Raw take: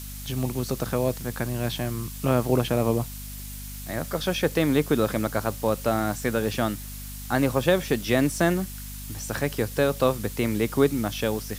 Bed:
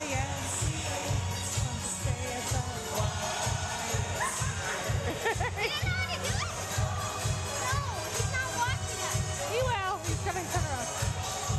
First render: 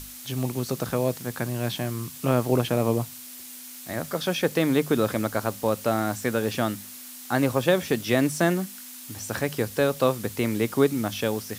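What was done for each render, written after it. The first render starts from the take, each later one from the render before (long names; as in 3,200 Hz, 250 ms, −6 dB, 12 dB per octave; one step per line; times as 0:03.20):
mains-hum notches 50/100/150/200 Hz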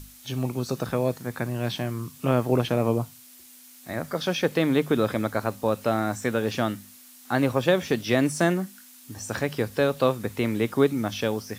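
noise reduction from a noise print 8 dB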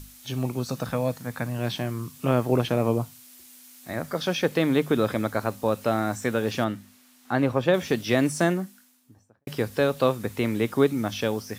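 0:00.62–0:01.59: parametric band 380 Hz −12.5 dB 0.25 octaves
0:06.64–0:07.74: high-shelf EQ 4,400 Hz −11 dB
0:08.33–0:09.47: fade out and dull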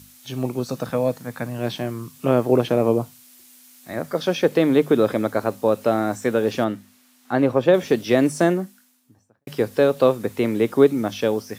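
high-pass filter 98 Hz
dynamic equaliser 430 Hz, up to +7 dB, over −35 dBFS, Q 0.77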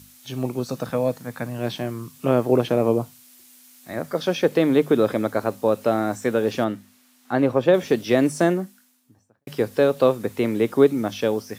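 level −1 dB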